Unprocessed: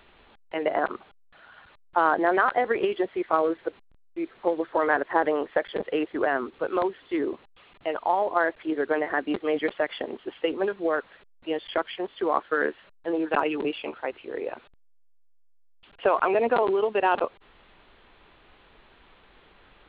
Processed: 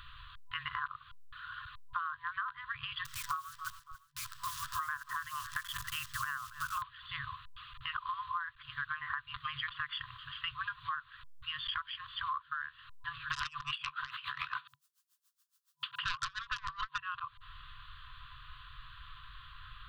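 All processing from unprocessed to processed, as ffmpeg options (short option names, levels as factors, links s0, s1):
-filter_complex "[0:a]asettb=1/sr,asplit=3[s0][s1][s2];[s0]atrim=end=3.054[s3];[s1]atrim=start=3.05:end=6.82,asetpts=PTS-STARTPTS,afade=t=in:d=0.004:c=qsin,afade=t=out:st=3.766:d=0.004:c=qsin,acrusher=bits=8:dc=4:mix=0:aa=0.000001,aecho=1:1:280|560:0.0794|0.0191,atrim=end_sample=166257[s4];[s2]atrim=start=6.816[s5];[s3][s4]acrossfade=d=0.004:c1=hsin:c2=qsin[s6];[s6][s5]acrossfade=d=0.004:c1=qsin:c2=hsin,asettb=1/sr,asplit=3[s7][s8][s9];[s7]atrim=end=13.304[s10];[s8]atrim=start=13.3:end=16.98,asetpts=PTS-STARTPTS,afade=t=in:d=0.004:c=qsin,afade=t=out:st=3.676:d=0.004:c=qsin,highpass=f=180:w=0.5412,highpass=f=180:w=1.3066,aeval=exprs='0.398*sin(PI/2*4.47*val(0)/0.398)':c=same,aeval=exprs='val(0)*pow(10,-22*(0.5-0.5*cos(2*PI*7.1*n/s))/20)':c=same[s11];[s9]atrim=start=16.976[s12];[s10][s11]acrossfade=d=0.004:c1=hsin:c2=qsin[s13];[s13][s12]acrossfade=d=0.004:c1=qsin:c2=hsin,afftfilt=real='re*(1-between(b*sr/4096,140,1000))':imag='im*(1-between(b*sr/4096,140,1000))':win_size=4096:overlap=0.75,equalizer=f=2200:t=o:w=0.49:g=-14,acompressor=threshold=0.00708:ratio=20,volume=2.82"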